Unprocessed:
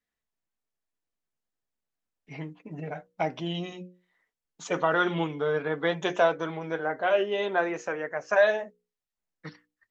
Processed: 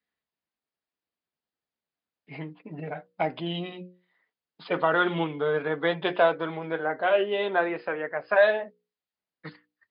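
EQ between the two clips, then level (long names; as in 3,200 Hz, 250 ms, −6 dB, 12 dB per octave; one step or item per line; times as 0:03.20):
high-pass filter 60 Hz
linear-phase brick-wall low-pass 5,100 Hz
low-shelf EQ 77 Hz −9.5 dB
+1.5 dB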